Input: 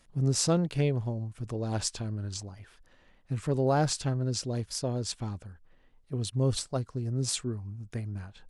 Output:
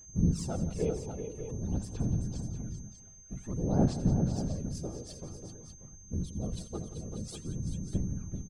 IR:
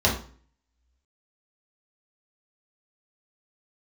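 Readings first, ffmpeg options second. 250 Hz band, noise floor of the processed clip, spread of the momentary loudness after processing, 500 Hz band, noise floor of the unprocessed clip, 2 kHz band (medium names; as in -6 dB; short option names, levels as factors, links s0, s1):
0.0 dB, -52 dBFS, 16 LU, -6.0 dB, -63 dBFS, under -10 dB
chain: -af "tiltshelf=f=710:g=6,aphaser=in_gain=1:out_gain=1:delay=2.5:decay=0.76:speed=0.51:type=sinusoidal,afftfilt=real='hypot(re,im)*cos(2*PI*random(0))':imag='hypot(re,im)*sin(2*PI*random(1))':win_size=512:overlap=0.75,aeval=exprs='val(0)+0.00708*sin(2*PI*6300*n/s)':c=same,aecho=1:1:83|172|386|591:0.133|0.211|0.376|0.316,volume=0.422"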